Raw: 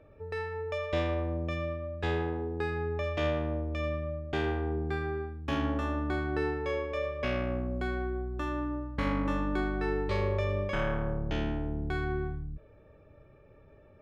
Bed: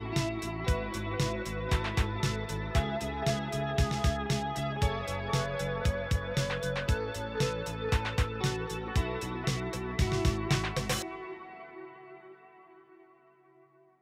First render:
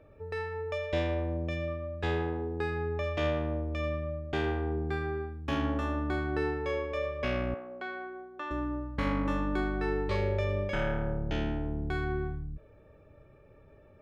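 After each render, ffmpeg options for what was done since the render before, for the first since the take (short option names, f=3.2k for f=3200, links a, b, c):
-filter_complex "[0:a]asettb=1/sr,asplit=3[a][b][c];[a]atrim=end=0.764[d];[b]atrim=start=0.76:end=1.68,asetpts=PTS-STARTPTS,afade=t=in:d=0.004:c=qsin,afade=t=out:st=0.916:d=0.004:c=qsin,bandreject=f=1.2k:w=12[e];[c]atrim=start=1.676[f];[d][e]acrossfade=d=0.004:c1=hsin:c2=qsin[g];[g][f]acrossfade=d=0.004:c1=qsin:c2=hsin,asettb=1/sr,asplit=3[h][i][j];[h]atrim=end=7.544[k];[i]atrim=start=7.54:end=8.51,asetpts=PTS-STARTPTS,afade=t=in:d=0.004:c=qsin,afade=t=out:st=0.966:d=0.004:c=qsin,highpass=540,lowpass=3.7k[l];[j]atrim=start=8.506[m];[k][l]acrossfade=d=0.004:c1=hsin:c2=qsin[n];[n][m]acrossfade=d=0.004:c1=qsin:c2=hsin,asettb=1/sr,asplit=3[o][p][q];[o]atrim=end=10.154[r];[p]atrim=start=10.15:end=11.65,asetpts=PTS-STARTPTS,afade=t=in:d=0.004:c=qsin,afade=t=out:st=1.496:d=0.004:c=qsin,asuperstop=centerf=1100:order=4:qfactor=7.7[s];[q]atrim=start=11.646[t];[r][s]acrossfade=d=0.004:c1=hsin:c2=qsin[u];[u][t]acrossfade=d=0.004:c1=qsin:c2=hsin"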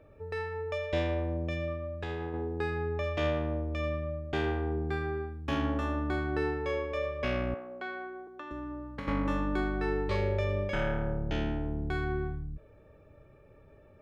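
-filter_complex "[0:a]asettb=1/sr,asplit=3[a][b][c];[a]atrim=end=1.944[d];[b]atrim=start=1.94:end=2.34,asetpts=PTS-STARTPTS,afade=t=in:d=0.004:c=qsin,afade=t=out:st=0.396:d=0.004:c=qsin,acompressor=threshold=-32dB:ratio=6:attack=3.2:release=140:knee=1:detection=peak[e];[c]atrim=start=2.336[f];[d][e]acrossfade=d=0.004:c1=hsin:c2=qsin[g];[g][f]acrossfade=d=0.004:c1=qsin:c2=hsin,asettb=1/sr,asplit=3[h][i][j];[h]atrim=end=8.274[k];[i]atrim=start=8.27:end=9.08,asetpts=PTS-STARTPTS,afade=t=in:d=0.004:c=qsin,afade=t=out:st=0.806:d=0.004:c=qsin,acrossover=split=100|380[l][m][n];[l]acompressor=threshold=-50dB:ratio=4[o];[m]acompressor=threshold=-42dB:ratio=4[p];[n]acompressor=threshold=-43dB:ratio=4[q];[o][p][q]amix=inputs=3:normalize=0[r];[j]atrim=start=9.076[s];[k][r]acrossfade=d=0.004:c1=hsin:c2=qsin[t];[t][s]acrossfade=d=0.004:c1=qsin:c2=hsin"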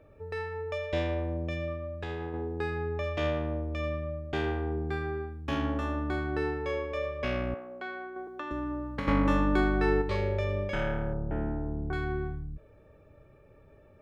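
-filter_complex "[0:a]asettb=1/sr,asplit=3[a][b][c];[a]atrim=end=8.164[d];[b]atrim=start=8.16:end=10.02,asetpts=PTS-STARTPTS,afade=t=in:d=0.004:c=qsin,afade=t=out:st=1.856:d=0.004:c=qsin,acontrast=33[e];[c]atrim=start=10.016[f];[d][e]acrossfade=d=0.004:c1=hsin:c2=qsin[g];[g][f]acrossfade=d=0.004:c1=qsin:c2=hsin,asettb=1/sr,asplit=3[h][i][j];[h]atrim=end=11.134[k];[i]atrim=start=11.13:end=11.93,asetpts=PTS-STARTPTS,afade=t=in:d=0.004:c=qsin,afade=t=out:st=0.796:d=0.004:c=qsin,lowpass=f=1.5k:w=0.5412,lowpass=f=1.5k:w=1.3066[l];[j]atrim=start=11.926[m];[k][l]acrossfade=d=0.004:c1=hsin:c2=qsin[n];[n][m]acrossfade=d=0.004:c1=qsin:c2=hsin"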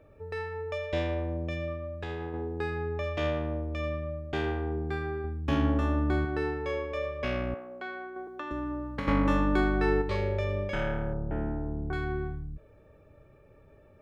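-filter_complex "[0:a]asettb=1/sr,asplit=3[a][b][c];[a]atrim=end=5.244[d];[b]atrim=start=5.24:end=6.25,asetpts=PTS-STARTPTS,afade=t=in:d=0.004:c=qsin,afade=t=out:st=1.006:d=0.004:c=qsin,lowshelf=f=420:g=6.5[e];[c]atrim=start=6.246[f];[d][e]acrossfade=d=0.004:c1=hsin:c2=qsin[g];[g][f]acrossfade=d=0.004:c1=qsin:c2=hsin"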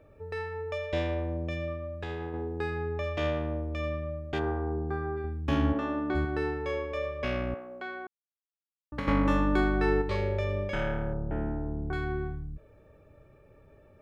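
-filter_complex "[0:a]asplit=3[a][b][c];[a]afade=t=out:st=4.38:d=0.02[d];[b]highshelf=f=1.8k:t=q:w=1.5:g=-13,afade=t=in:st=4.38:d=0.02,afade=t=out:st=5.16:d=0.02[e];[c]afade=t=in:st=5.16:d=0.02[f];[d][e][f]amix=inputs=3:normalize=0,asplit=3[g][h][i];[g]afade=t=out:st=5.72:d=0.02[j];[h]highpass=220,lowpass=4.4k,afade=t=in:st=5.72:d=0.02,afade=t=out:st=6.14:d=0.02[k];[i]afade=t=in:st=6.14:d=0.02[l];[j][k][l]amix=inputs=3:normalize=0,asplit=3[m][n][o];[m]atrim=end=8.07,asetpts=PTS-STARTPTS,afade=t=out:st=8.066:d=0.004:c=hsin[p];[n]atrim=start=8.07:end=8.92,asetpts=PTS-STARTPTS,volume=0[q];[o]atrim=start=8.92,asetpts=PTS-STARTPTS,afade=t=in:d=0.004:c=hsin[r];[p][q][r]concat=n=3:v=0:a=1"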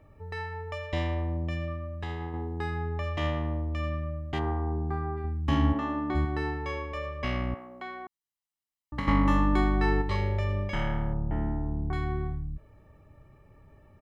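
-af "aecho=1:1:1:0.58"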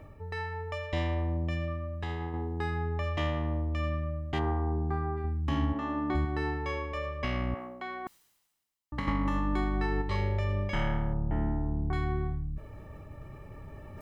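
-af "alimiter=limit=-19.5dB:level=0:latency=1:release=343,areverse,acompressor=mode=upward:threshold=-34dB:ratio=2.5,areverse"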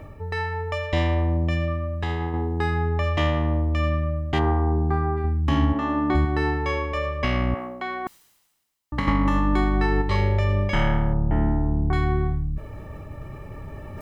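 -af "volume=8.5dB"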